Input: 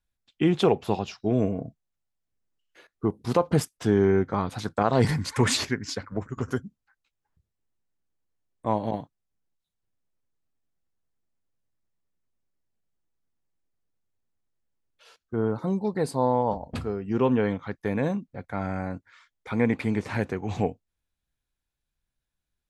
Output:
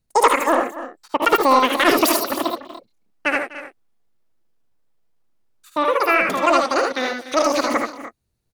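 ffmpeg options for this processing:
ffmpeg -i in.wav -af "acontrast=72,aecho=1:1:151|196|219|660|775|845:0.335|0.473|0.422|0.106|0.178|0.126,asetrate=117306,aresample=44100" out.wav

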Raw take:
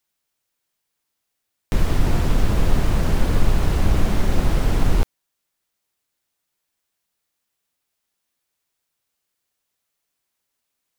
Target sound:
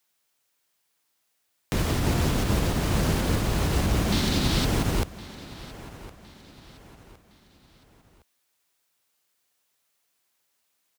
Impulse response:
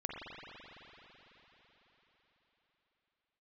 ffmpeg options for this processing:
-filter_complex "[0:a]lowshelf=frequency=290:gain=-6,alimiter=limit=-14dB:level=0:latency=1:release=86,asettb=1/sr,asplit=3[link_01][link_02][link_03];[link_01]atrim=end=4.124[link_04];[link_02]atrim=start=4.12:end=4.65,asetpts=PTS-STARTPTS,afade=type=in:duration=0.004:curve=qsin,afade=type=out:start_time=0.526:duration=0.004:curve=qsin,equalizer=frequency=250:width_type=o:width=1:gain=4,equalizer=frequency=500:width_type=o:width=1:gain=-4,equalizer=frequency=4000:width_type=o:width=1:gain=10[link_05];[link_03]atrim=start=4.646[link_06];[link_04][link_05]acrossfade=duration=0.004:curve1=hsin:curve2=qsin[link_07];[link_07][link_06]acrossfade=duration=0.004:curve1=qsin:curve2=hsin,aecho=1:1:1062|2124|3186:0.112|0.0449|0.018,acrossover=split=370|3000[link_08][link_09][link_10];[link_09]acompressor=threshold=-43dB:ratio=1.5[link_11];[link_08][link_11][link_10]amix=inputs=3:normalize=0,highpass=54,volume=4.5dB"

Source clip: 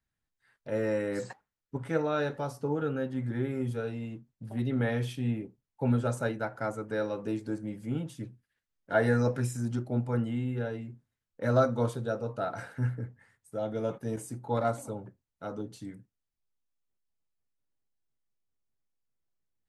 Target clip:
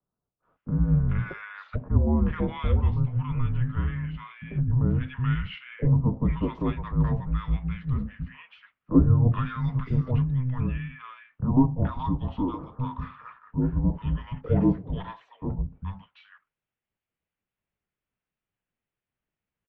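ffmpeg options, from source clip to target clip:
ffmpeg -i in.wav -filter_complex "[0:a]highpass=frequency=200:width_type=q:width=0.5412,highpass=frequency=200:width_type=q:width=1.307,lowpass=frequency=3300:width_type=q:width=0.5176,lowpass=frequency=3300:width_type=q:width=0.7071,lowpass=frequency=3300:width_type=q:width=1.932,afreqshift=-380,acrossover=split=190|740|2000[link_01][link_02][link_03][link_04];[link_03]acompressor=threshold=-50dB:ratio=6[link_05];[link_01][link_02][link_05][link_04]amix=inputs=4:normalize=0,asettb=1/sr,asplit=3[link_06][link_07][link_08];[link_06]atrim=end=11.444[link_09];[link_07]atrim=start=11.44:end=12.6,asetpts=PTS-STARTPTS,afade=type=in:duration=0.004:curve=qsin,afade=type=out:start_time=1.156:duration=0.004:curve=qsin,equalizer=frequency=125:width_type=o:width=1:gain=-6,equalizer=frequency=500:width_type=o:width=1:gain=-5,equalizer=frequency=1000:width_type=o:width=1:gain=6,equalizer=frequency=2000:width_type=o:width=1:gain=-10[link_10];[link_08]atrim=start=12.596[link_11];[link_09][link_10]acrossfade=duration=0.004:curve1=hsin:curve2=qsin[link_12];[link_12][link_11]acrossfade=duration=0.004:curve1=qsin:curve2=hsin,acrossover=split=930[link_13][link_14];[link_14]adelay=430[link_15];[link_13][link_15]amix=inputs=2:normalize=0,volume=9dB" out.wav

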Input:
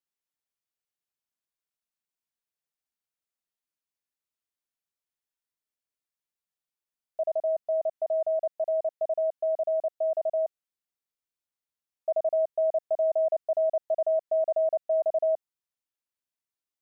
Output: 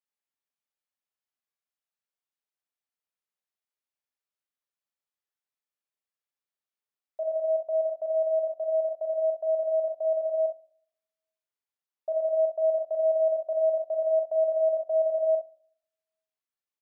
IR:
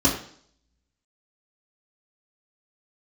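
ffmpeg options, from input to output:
-filter_complex "[0:a]bass=frequency=250:gain=-12,treble=frequency=4000:gain=-6,aecho=1:1:42|61:0.562|0.316,asplit=2[link_01][link_02];[1:a]atrim=start_sample=2205[link_03];[link_02][link_03]afir=irnorm=-1:irlink=0,volume=-28.5dB[link_04];[link_01][link_04]amix=inputs=2:normalize=0,volume=-2.5dB"

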